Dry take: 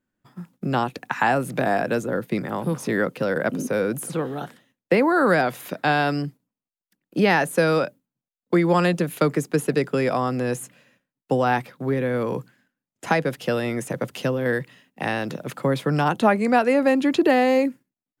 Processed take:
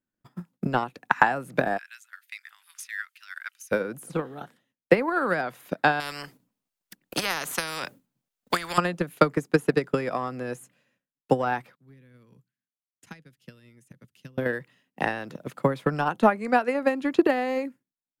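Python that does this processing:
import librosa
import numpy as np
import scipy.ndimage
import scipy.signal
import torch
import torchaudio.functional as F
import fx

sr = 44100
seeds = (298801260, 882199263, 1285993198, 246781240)

y = fx.cheby2_highpass(x, sr, hz=530.0, order=4, stop_db=60, at=(1.77, 3.71), fade=0.02)
y = fx.spectral_comp(y, sr, ratio=4.0, at=(6.0, 8.78))
y = fx.tone_stack(y, sr, knobs='6-0-2', at=(11.75, 14.38))
y = fx.dynamic_eq(y, sr, hz=1300.0, q=0.83, threshold_db=-35.0, ratio=4.0, max_db=5)
y = fx.transient(y, sr, attack_db=12, sustain_db=-2)
y = F.gain(torch.from_numpy(y), -10.5).numpy()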